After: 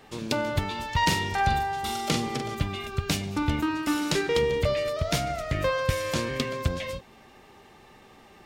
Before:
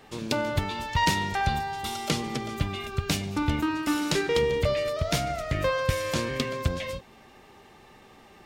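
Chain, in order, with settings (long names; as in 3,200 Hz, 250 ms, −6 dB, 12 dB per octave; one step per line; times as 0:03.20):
0:01.04–0:02.55: double-tracking delay 43 ms −6 dB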